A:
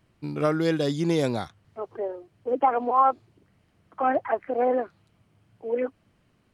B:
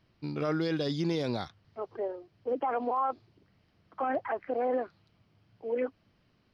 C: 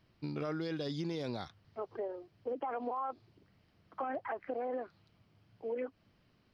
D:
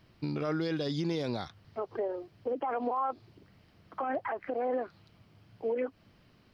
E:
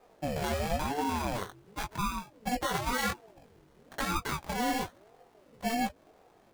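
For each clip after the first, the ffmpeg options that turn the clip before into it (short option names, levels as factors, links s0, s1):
-af "highshelf=f=6300:t=q:w=3:g=-8.5,alimiter=limit=0.119:level=0:latency=1:release=28,volume=0.668"
-af "acompressor=threshold=0.02:ratio=4,volume=0.891"
-af "alimiter=level_in=2.37:limit=0.0631:level=0:latency=1:release=172,volume=0.422,volume=2.37"
-af "acrusher=samples=18:mix=1:aa=0.000001,flanger=delay=18:depth=4.7:speed=1.2,aeval=exprs='val(0)*sin(2*PI*420*n/s+420*0.45/0.96*sin(2*PI*0.96*n/s))':c=same,volume=2.24"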